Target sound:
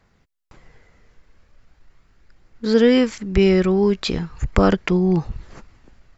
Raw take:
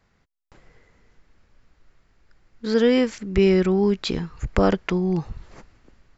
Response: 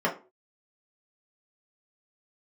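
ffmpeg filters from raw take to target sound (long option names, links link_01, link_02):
-af "atempo=1,aphaser=in_gain=1:out_gain=1:delay=2:decay=0.21:speed=0.39:type=triangular,volume=3dB"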